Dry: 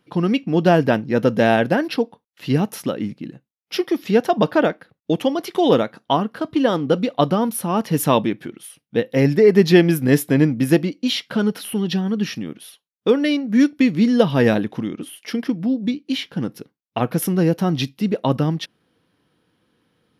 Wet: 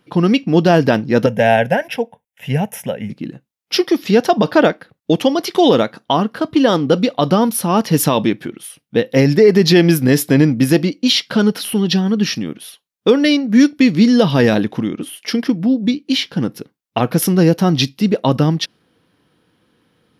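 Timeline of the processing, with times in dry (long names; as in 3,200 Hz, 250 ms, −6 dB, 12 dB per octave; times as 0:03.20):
0:01.26–0:03.10: phaser with its sweep stopped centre 1,200 Hz, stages 6
whole clip: dynamic equaliser 4,900 Hz, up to +7 dB, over −45 dBFS, Q 1.5; boost into a limiter +6.5 dB; level −1 dB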